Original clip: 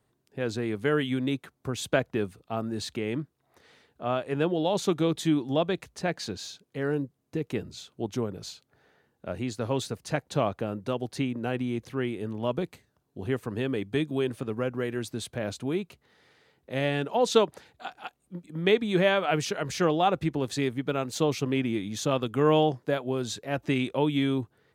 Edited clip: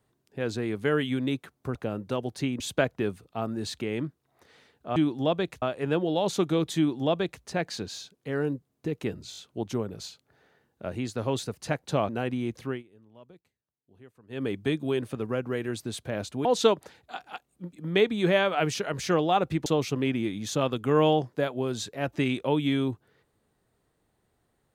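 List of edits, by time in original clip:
5.26–5.92 s: copy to 4.11 s
7.80 s: stutter 0.02 s, 4 plays
10.52–11.37 s: move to 1.75 s
11.96–13.72 s: dip -23 dB, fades 0.15 s
15.73–17.16 s: delete
20.37–21.16 s: delete

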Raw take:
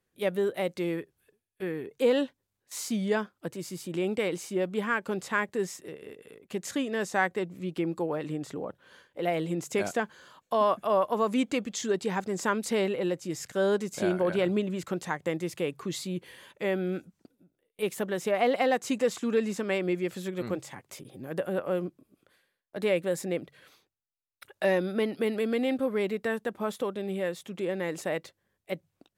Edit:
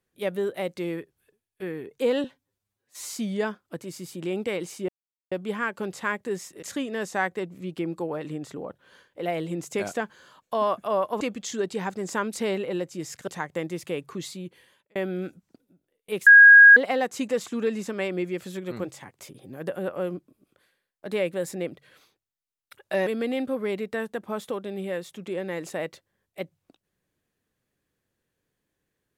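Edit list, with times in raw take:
2.24–2.81 s: stretch 1.5×
4.60 s: insert silence 0.43 s
5.91–6.62 s: delete
11.20–11.51 s: delete
13.58–14.98 s: delete
15.84–16.66 s: fade out
17.97–18.47 s: bleep 1.64 kHz -7 dBFS
24.77–25.38 s: delete

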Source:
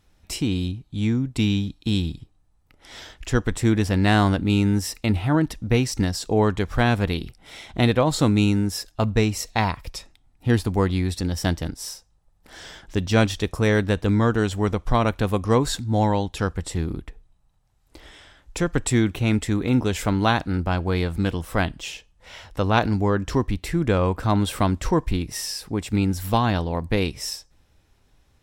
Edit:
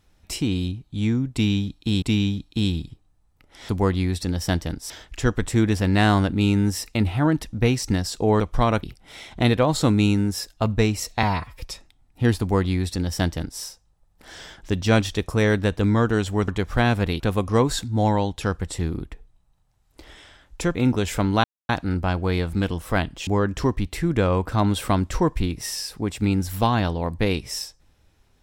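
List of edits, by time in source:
1.32–2.02 s: loop, 2 plays
6.49–7.21 s: swap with 14.73–15.16 s
9.61–9.87 s: stretch 1.5×
10.65–11.86 s: copy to 2.99 s
18.71–19.63 s: delete
20.32 s: insert silence 0.25 s
21.90–22.98 s: delete

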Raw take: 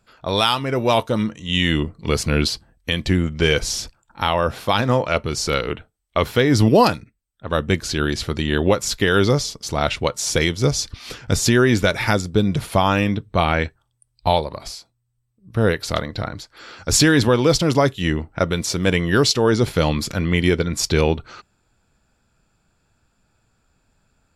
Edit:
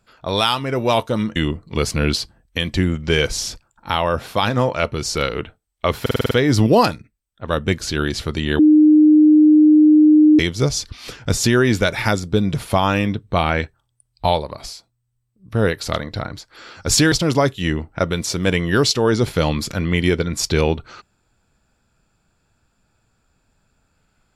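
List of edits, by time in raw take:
1.36–1.68 s: delete
6.33 s: stutter 0.05 s, 7 plays
8.61–10.41 s: bleep 305 Hz -7 dBFS
17.14–17.52 s: delete

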